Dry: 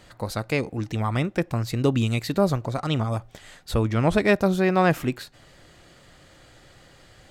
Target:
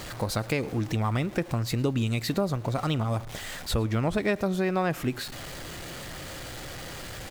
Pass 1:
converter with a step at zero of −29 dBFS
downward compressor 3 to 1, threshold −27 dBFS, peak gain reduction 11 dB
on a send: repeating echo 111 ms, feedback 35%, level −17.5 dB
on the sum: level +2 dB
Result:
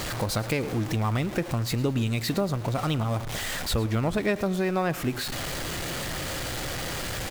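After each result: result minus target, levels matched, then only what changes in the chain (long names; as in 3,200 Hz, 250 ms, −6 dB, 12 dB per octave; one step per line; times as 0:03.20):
converter with a step at zero: distortion +8 dB; echo-to-direct +6 dB
change: converter with a step at zero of −37.5 dBFS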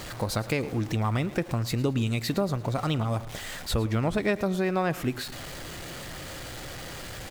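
echo-to-direct +6 dB
change: repeating echo 111 ms, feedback 35%, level −23.5 dB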